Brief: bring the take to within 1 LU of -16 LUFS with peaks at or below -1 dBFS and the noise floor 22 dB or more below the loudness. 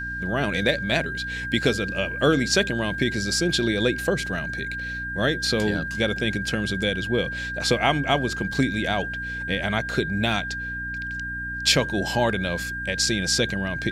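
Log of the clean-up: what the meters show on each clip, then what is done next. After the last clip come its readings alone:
hum 60 Hz; harmonics up to 300 Hz; hum level -35 dBFS; steady tone 1600 Hz; tone level -29 dBFS; loudness -24.0 LUFS; peak -4.5 dBFS; loudness target -16.0 LUFS
-> de-hum 60 Hz, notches 5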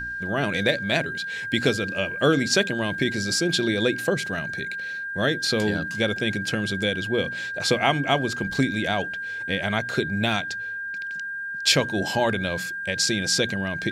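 hum none; steady tone 1600 Hz; tone level -29 dBFS
-> notch 1600 Hz, Q 30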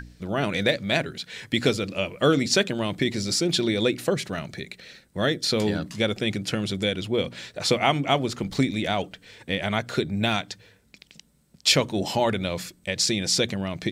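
steady tone none; loudness -25.0 LUFS; peak -5.0 dBFS; loudness target -16.0 LUFS
-> gain +9 dB; limiter -1 dBFS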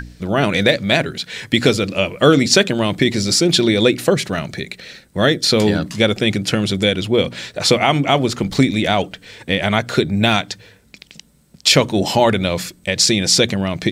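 loudness -16.5 LUFS; peak -1.0 dBFS; noise floor -52 dBFS

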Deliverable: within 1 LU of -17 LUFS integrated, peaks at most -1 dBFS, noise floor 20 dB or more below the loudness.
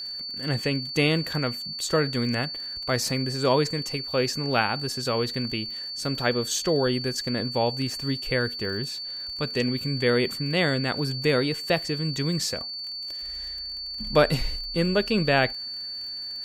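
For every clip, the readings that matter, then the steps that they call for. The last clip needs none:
ticks 38/s; steady tone 4500 Hz; tone level -32 dBFS; loudness -26.0 LUFS; peak -6.0 dBFS; loudness target -17.0 LUFS
-> de-click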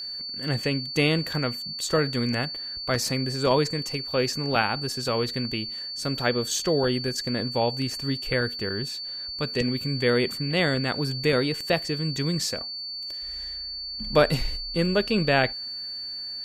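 ticks 0.18/s; steady tone 4500 Hz; tone level -32 dBFS
-> notch 4500 Hz, Q 30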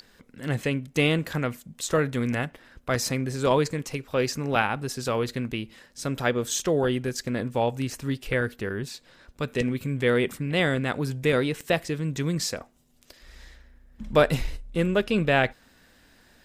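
steady tone none; loudness -26.5 LUFS; peak -6.0 dBFS; loudness target -17.0 LUFS
-> gain +9.5 dB; limiter -1 dBFS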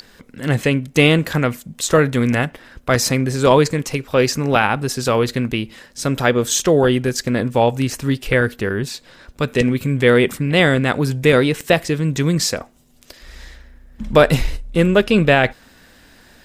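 loudness -17.5 LUFS; peak -1.0 dBFS; noise floor -50 dBFS

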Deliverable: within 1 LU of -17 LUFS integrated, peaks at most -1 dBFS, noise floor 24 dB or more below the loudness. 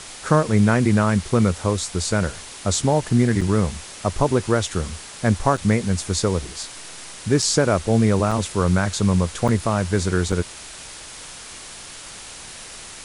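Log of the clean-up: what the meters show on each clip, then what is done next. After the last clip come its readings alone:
dropouts 6; longest dropout 5.1 ms; noise floor -39 dBFS; noise floor target -45 dBFS; loudness -21.0 LUFS; peak -3.0 dBFS; loudness target -17.0 LUFS
-> interpolate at 3.41/5.57/7.42/8.31/9.48/10.32, 5.1 ms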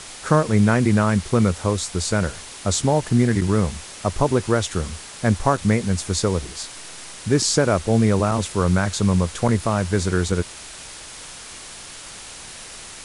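dropouts 0; noise floor -39 dBFS; noise floor target -45 dBFS
-> denoiser 6 dB, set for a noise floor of -39 dBFS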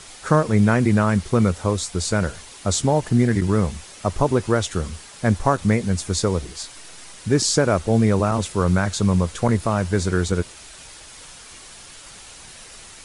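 noise floor -43 dBFS; noise floor target -45 dBFS
-> denoiser 6 dB, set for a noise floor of -43 dBFS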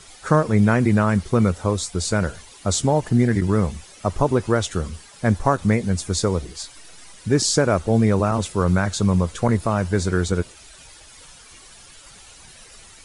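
noise floor -46 dBFS; loudness -21.0 LUFS; peak -3.0 dBFS; loudness target -17.0 LUFS
-> gain +4 dB; limiter -1 dBFS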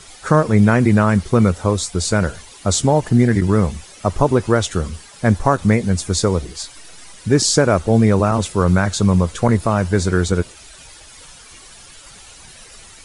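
loudness -17.0 LUFS; peak -1.0 dBFS; noise floor -42 dBFS

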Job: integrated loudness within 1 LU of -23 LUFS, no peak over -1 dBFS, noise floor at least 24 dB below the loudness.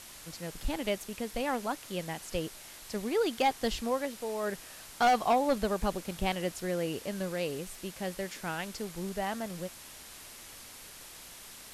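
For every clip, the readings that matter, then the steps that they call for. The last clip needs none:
clipped 0.4%; flat tops at -20.0 dBFS; noise floor -49 dBFS; noise floor target -57 dBFS; loudness -33.0 LUFS; peak -20.0 dBFS; loudness target -23.0 LUFS
-> clip repair -20 dBFS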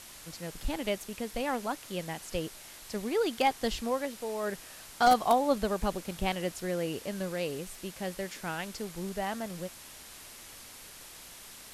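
clipped 0.0%; noise floor -49 dBFS; noise floor target -57 dBFS
-> noise print and reduce 8 dB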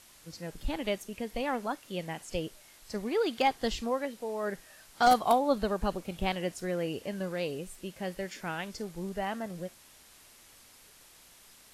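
noise floor -57 dBFS; loudness -32.5 LUFS; peak -11.0 dBFS; loudness target -23.0 LUFS
-> gain +9.5 dB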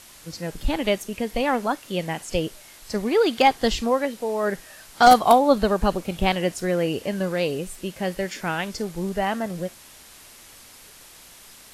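loudness -23.0 LUFS; peak -1.5 dBFS; noise floor -48 dBFS

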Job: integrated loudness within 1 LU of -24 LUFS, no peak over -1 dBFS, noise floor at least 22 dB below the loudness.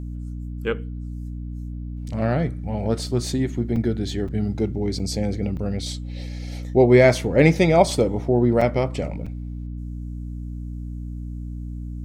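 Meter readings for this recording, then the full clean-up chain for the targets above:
dropouts 6; longest dropout 5.0 ms; hum 60 Hz; harmonics up to 300 Hz; hum level -29 dBFS; loudness -21.5 LUFS; peak -3.0 dBFS; loudness target -24.0 LUFS
-> interpolate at 3.76/4.28/4.99/5.57/8.61/9.26, 5 ms; notches 60/120/180/240/300 Hz; gain -2.5 dB

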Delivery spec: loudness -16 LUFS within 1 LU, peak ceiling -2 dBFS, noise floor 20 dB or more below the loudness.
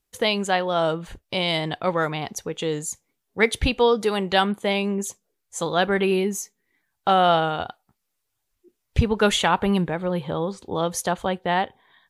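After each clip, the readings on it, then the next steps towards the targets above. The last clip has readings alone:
loudness -23.5 LUFS; peak -5.0 dBFS; loudness target -16.0 LUFS
-> gain +7.5 dB; limiter -2 dBFS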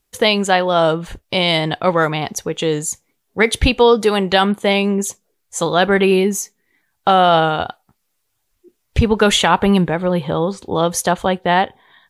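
loudness -16.5 LUFS; peak -2.0 dBFS; noise floor -70 dBFS

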